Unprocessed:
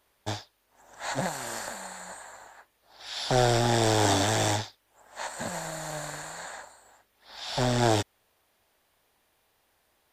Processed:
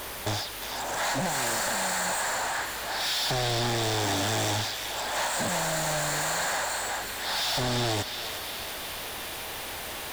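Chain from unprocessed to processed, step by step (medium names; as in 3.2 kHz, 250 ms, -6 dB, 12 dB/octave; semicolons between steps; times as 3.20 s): compression 4:1, threshold -42 dBFS, peak gain reduction 20 dB; power-law waveshaper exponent 0.35; on a send: band-passed feedback delay 353 ms, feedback 71%, band-pass 3 kHz, level -4 dB; on the sum: trim +5 dB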